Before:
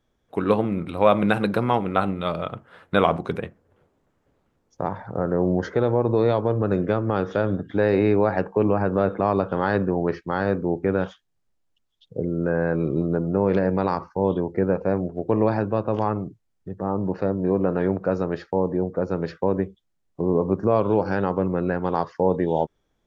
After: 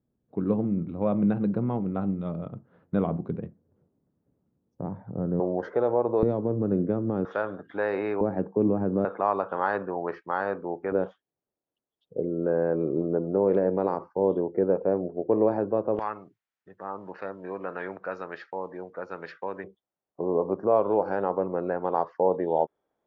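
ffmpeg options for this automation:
-af "asetnsamples=n=441:p=0,asendcmd='5.4 bandpass f 680;6.23 bandpass f 240;7.25 bandpass f 1100;8.21 bandpass f 250;9.05 bandpass f 1000;10.92 bandpass f 460;15.99 bandpass f 1800;19.64 bandpass f 670',bandpass=f=180:t=q:w=1.1:csg=0"

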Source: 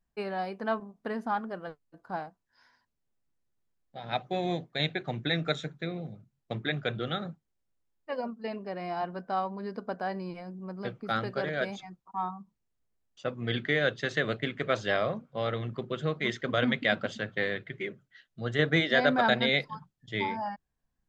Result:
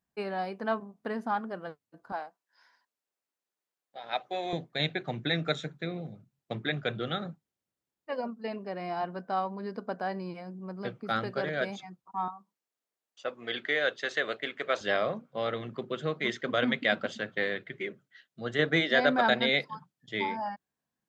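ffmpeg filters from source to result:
-af "asetnsamples=n=441:p=0,asendcmd='2.12 highpass f 470;4.53 highpass f 110;12.28 highpass f 440;14.81 highpass f 180',highpass=110"

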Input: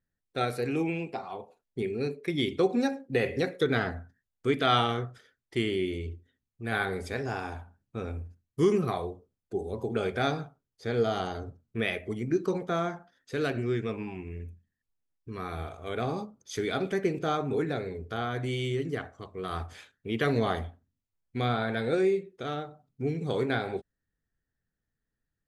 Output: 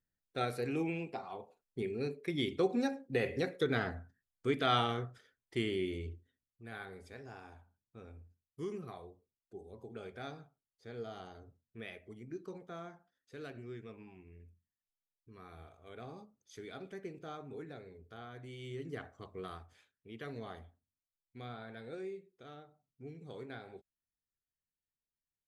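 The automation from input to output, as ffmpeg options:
-af "volume=1.88,afade=t=out:st=6.06:d=0.68:silence=0.281838,afade=t=in:st=18.57:d=0.78:silence=0.266073,afade=t=out:st=19.35:d=0.25:silence=0.237137"

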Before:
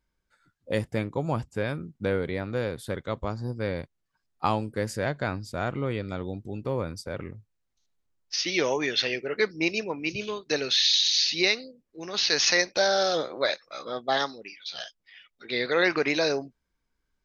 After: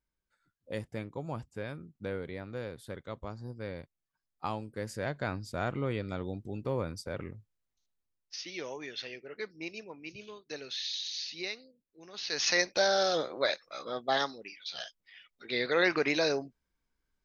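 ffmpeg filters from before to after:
-af "volume=2.37,afade=t=in:st=4.68:d=0.81:silence=0.473151,afade=t=out:st=7.28:d=1.21:silence=0.281838,afade=t=in:st=12.22:d=0.41:silence=0.281838"

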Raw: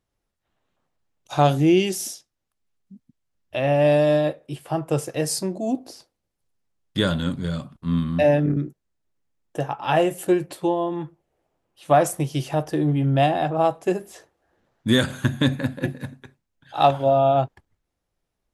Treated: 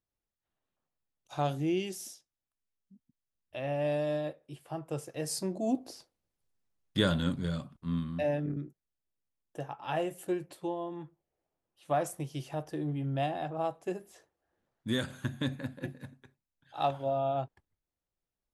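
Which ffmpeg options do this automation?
-af "volume=0.531,afade=t=in:st=5.14:d=0.5:silence=0.398107,afade=t=out:st=7.31:d=0.89:silence=0.421697"

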